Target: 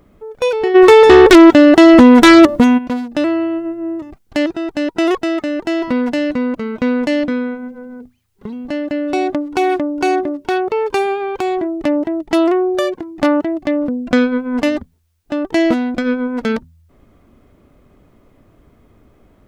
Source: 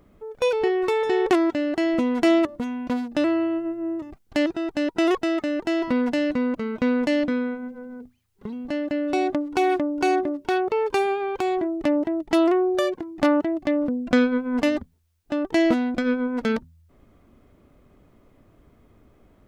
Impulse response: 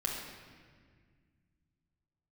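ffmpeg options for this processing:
-filter_complex "[0:a]asplit=3[link_01][link_02][link_03];[link_01]afade=type=out:start_time=0.74:duration=0.02[link_04];[link_02]aeval=exprs='0.473*sin(PI/2*3.16*val(0)/0.473)':channel_layout=same,afade=type=in:start_time=0.74:duration=0.02,afade=type=out:start_time=2.77:duration=0.02[link_05];[link_03]afade=type=in:start_time=2.77:duration=0.02[link_06];[link_04][link_05][link_06]amix=inputs=3:normalize=0,volume=5.5dB"

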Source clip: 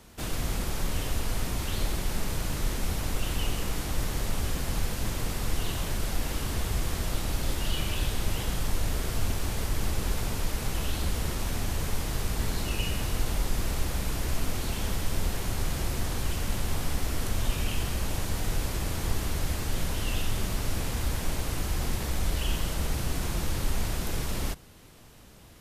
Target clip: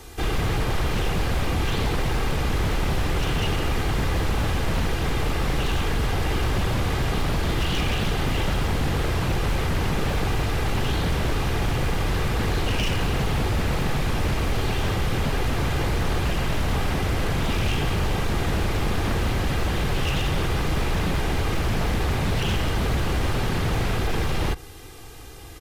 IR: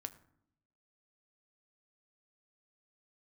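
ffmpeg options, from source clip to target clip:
-filter_complex "[0:a]aecho=1:1:2.5:0.74,acrossover=split=3700[link_01][link_02];[link_02]acompressor=threshold=-53dB:ratio=4:attack=1:release=60[link_03];[link_01][link_03]amix=inputs=2:normalize=0,aeval=exprs='0.0501*(abs(mod(val(0)/0.0501+3,4)-2)-1)':channel_layout=same,volume=8.5dB"

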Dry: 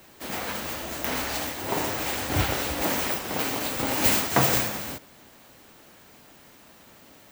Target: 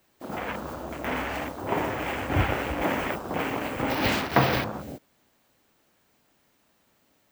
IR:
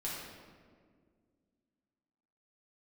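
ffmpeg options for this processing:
-filter_complex "[0:a]afwtdn=0.0224,acrossover=split=4500[link_01][link_02];[link_02]acompressor=threshold=-39dB:ratio=6[link_03];[link_01][link_03]amix=inputs=2:normalize=0,volume=1.5dB"

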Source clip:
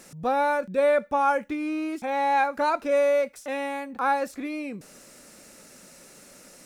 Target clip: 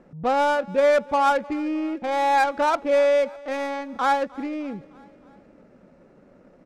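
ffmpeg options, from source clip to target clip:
ffmpeg -i in.wav -af "adynamicsmooth=sensitivity=3.5:basefreq=810,aecho=1:1:306|612|918|1224:0.075|0.0435|0.0252|0.0146,volume=3dB" out.wav

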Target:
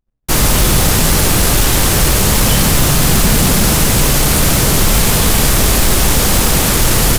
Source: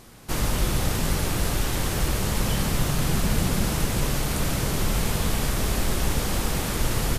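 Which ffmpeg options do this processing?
ffmpeg -i in.wav -af "equalizer=frequency=13000:width_type=o:width=2.1:gain=5.5,acrusher=bits=5:mix=0:aa=0.5,apsyclip=18.5dB,anlmdn=1580,volume=-5dB" out.wav

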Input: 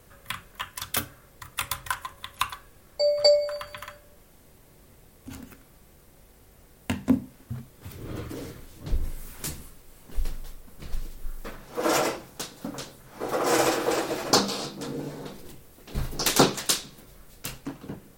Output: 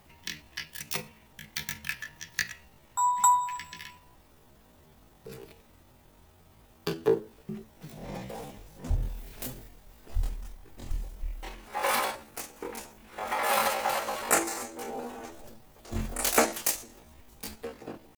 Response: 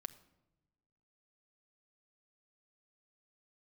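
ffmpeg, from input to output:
-af "asetrate=74167,aresample=44100,atempo=0.594604,volume=-3dB"

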